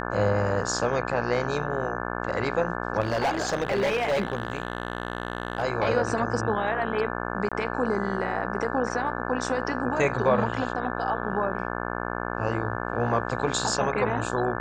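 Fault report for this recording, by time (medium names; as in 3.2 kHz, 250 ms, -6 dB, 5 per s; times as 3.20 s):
buzz 60 Hz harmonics 29 -31 dBFS
3.00–5.64 s: clipped -20.5 dBFS
7.49–7.52 s: dropout 26 ms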